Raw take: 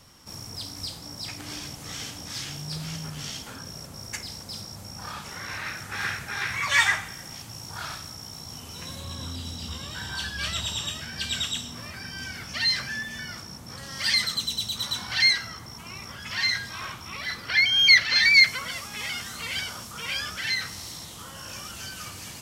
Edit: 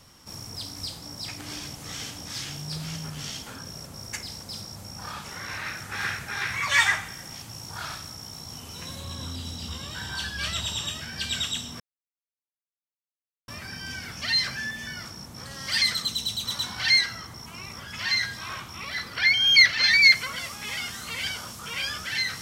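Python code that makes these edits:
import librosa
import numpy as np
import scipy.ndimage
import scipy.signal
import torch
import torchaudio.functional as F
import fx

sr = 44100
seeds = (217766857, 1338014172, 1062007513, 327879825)

y = fx.edit(x, sr, fx.insert_silence(at_s=11.8, length_s=1.68), tone=tone)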